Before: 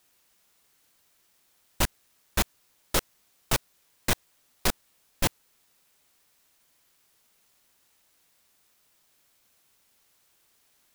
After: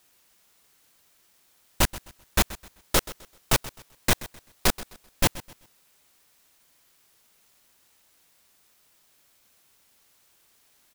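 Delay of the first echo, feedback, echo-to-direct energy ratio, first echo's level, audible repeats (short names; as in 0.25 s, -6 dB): 0.129 s, 30%, -17.0 dB, -17.5 dB, 2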